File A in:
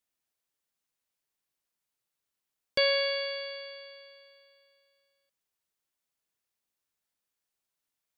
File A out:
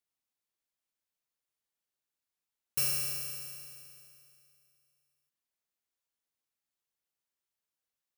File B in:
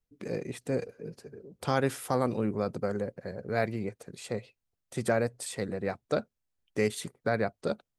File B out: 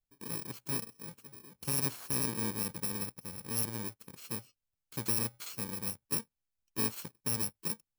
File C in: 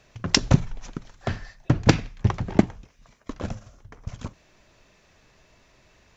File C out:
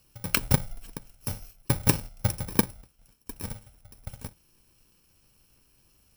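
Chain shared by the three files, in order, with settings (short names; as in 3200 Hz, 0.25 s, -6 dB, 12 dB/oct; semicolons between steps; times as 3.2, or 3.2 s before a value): FFT order left unsorted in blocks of 64 samples; gain -5 dB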